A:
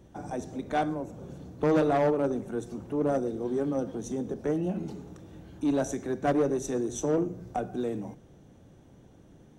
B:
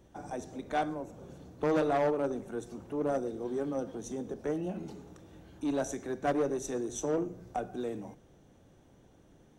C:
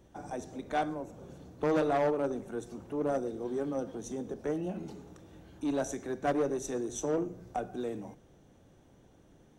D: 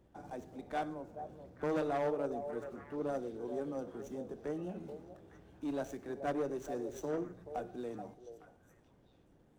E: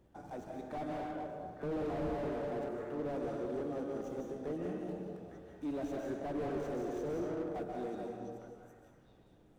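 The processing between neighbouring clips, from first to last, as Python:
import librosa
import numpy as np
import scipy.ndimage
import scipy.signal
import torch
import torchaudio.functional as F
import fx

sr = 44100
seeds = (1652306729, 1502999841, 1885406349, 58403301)

y1 = fx.peak_eq(x, sr, hz=140.0, db=-5.5, octaves=2.7)
y1 = F.gain(torch.from_numpy(y1), -2.0).numpy()
y2 = y1
y3 = scipy.ndimage.median_filter(y2, 9, mode='constant')
y3 = fx.echo_stepped(y3, sr, ms=429, hz=570.0, octaves=1.4, feedback_pct=70, wet_db=-7)
y3 = F.gain(torch.from_numpy(y3), -6.0).numpy()
y4 = fx.rev_freeverb(y3, sr, rt60_s=1.7, hf_ratio=0.65, predelay_ms=110, drr_db=1.0)
y4 = fx.slew_limit(y4, sr, full_power_hz=8.7)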